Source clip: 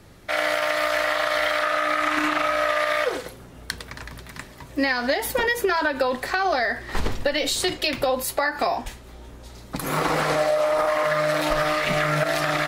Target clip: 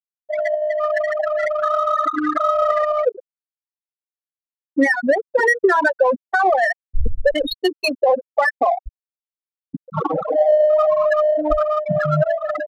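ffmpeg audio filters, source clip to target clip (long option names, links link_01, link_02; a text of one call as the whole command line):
ffmpeg -i in.wav -af "anlmdn=39.8,afftfilt=real='re*gte(hypot(re,im),0.316)':imag='im*gte(hypot(re,im),0.316)':win_size=1024:overlap=0.75,adynamicsmooth=sensitivity=5:basefreq=2800,volume=8dB" out.wav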